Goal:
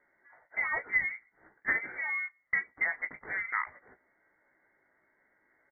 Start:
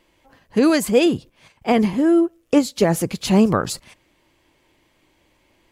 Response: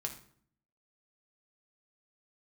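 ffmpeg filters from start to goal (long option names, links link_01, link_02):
-filter_complex "[0:a]asplit=2[link_01][link_02];[link_02]aeval=exprs='sgn(val(0))*max(abs(val(0))-0.0299,0)':channel_layout=same,volume=-12dB[link_03];[link_01][link_03]amix=inputs=2:normalize=0,acompressor=threshold=-18dB:ratio=6,highpass=frequency=430:width=0.5412,highpass=frequency=430:width=1.3066,aecho=1:1:17|33:0.473|0.158,lowpass=frequency=2100:width_type=q:width=0.5098,lowpass=frequency=2100:width_type=q:width=0.6013,lowpass=frequency=2100:width_type=q:width=0.9,lowpass=frequency=2100:width_type=q:width=2.563,afreqshift=-2500,volume=-5.5dB"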